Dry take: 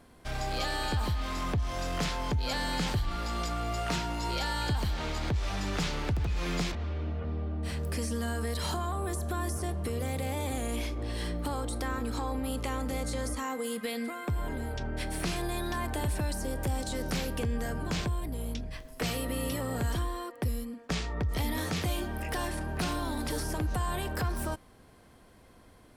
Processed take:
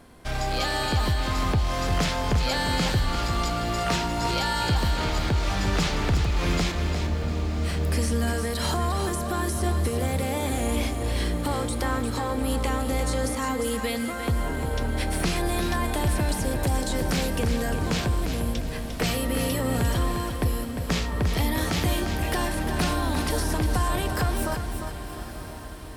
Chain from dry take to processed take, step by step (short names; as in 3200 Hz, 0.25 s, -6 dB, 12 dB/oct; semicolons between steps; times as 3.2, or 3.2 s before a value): on a send: diffused feedback echo 1.045 s, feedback 58%, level -13 dB; on the sum: lo-fi delay 0.351 s, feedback 35%, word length 10-bit, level -7.5 dB; gain +6 dB